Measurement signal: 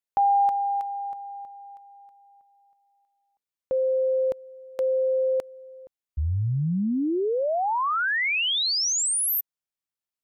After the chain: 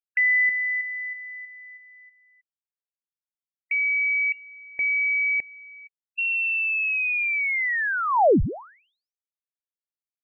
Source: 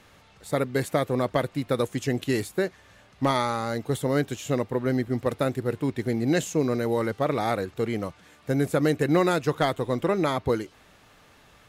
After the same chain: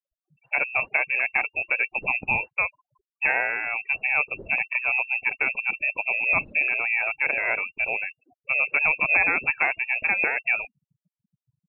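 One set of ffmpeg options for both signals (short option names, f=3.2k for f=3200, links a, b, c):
-af "aexciter=amount=6.1:drive=4.6:freq=2.2k,afftfilt=real='re*gte(hypot(re,im),0.02)':imag='im*gte(hypot(re,im),0.02)':win_size=1024:overlap=0.75,lowpass=f=2.4k:t=q:w=0.5098,lowpass=f=2.4k:t=q:w=0.6013,lowpass=f=2.4k:t=q:w=0.9,lowpass=f=2.4k:t=q:w=2.563,afreqshift=-2800"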